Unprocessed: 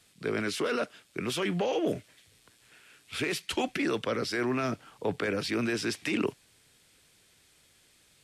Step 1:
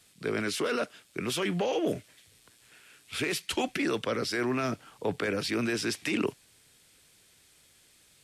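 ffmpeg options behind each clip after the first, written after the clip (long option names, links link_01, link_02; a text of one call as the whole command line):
ffmpeg -i in.wav -af "highshelf=frequency=6300:gain=4.5" out.wav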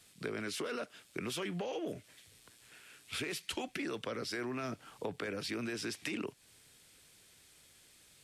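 ffmpeg -i in.wav -af "acompressor=threshold=-35dB:ratio=6,volume=-1dB" out.wav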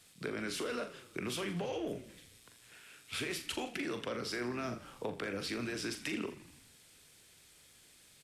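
ffmpeg -i in.wav -filter_complex "[0:a]asplit=2[link_01][link_02];[link_02]adelay=41,volume=-8.5dB[link_03];[link_01][link_03]amix=inputs=2:normalize=0,asplit=7[link_04][link_05][link_06][link_07][link_08][link_09][link_10];[link_05]adelay=82,afreqshift=-36,volume=-15dB[link_11];[link_06]adelay=164,afreqshift=-72,volume=-19.4dB[link_12];[link_07]adelay=246,afreqshift=-108,volume=-23.9dB[link_13];[link_08]adelay=328,afreqshift=-144,volume=-28.3dB[link_14];[link_09]adelay=410,afreqshift=-180,volume=-32.7dB[link_15];[link_10]adelay=492,afreqshift=-216,volume=-37.2dB[link_16];[link_04][link_11][link_12][link_13][link_14][link_15][link_16]amix=inputs=7:normalize=0" out.wav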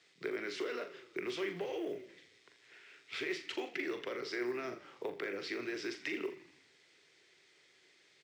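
ffmpeg -i in.wav -af "highpass=210,equalizer=frequency=220:width_type=q:width=4:gain=-9,equalizer=frequency=380:width_type=q:width=4:gain=10,equalizer=frequency=2000:width_type=q:width=4:gain=9,lowpass=frequency=6000:width=0.5412,lowpass=frequency=6000:width=1.3066,acrusher=bits=9:mode=log:mix=0:aa=0.000001,volume=-4dB" out.wav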